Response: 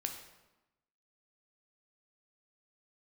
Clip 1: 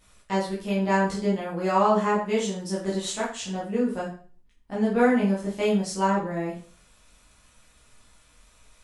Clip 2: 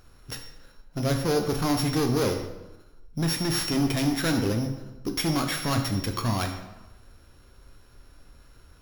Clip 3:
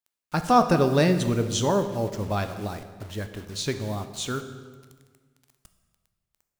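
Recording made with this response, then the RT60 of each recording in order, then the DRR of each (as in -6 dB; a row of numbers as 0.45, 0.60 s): 2; 0.40, 1.0, 1.6 s; -7.5, 3.5, 8.0 dB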